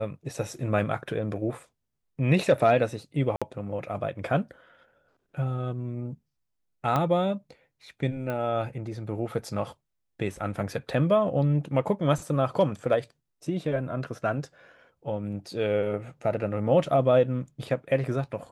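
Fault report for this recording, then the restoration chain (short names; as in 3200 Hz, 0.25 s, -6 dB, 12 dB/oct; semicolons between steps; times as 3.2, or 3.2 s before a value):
3.36–3.42 gap 56 ms
6.96 pop -13 dBFS
8.3 pop -20 dBFS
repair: de-click; interpolate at 3.36, 56 ms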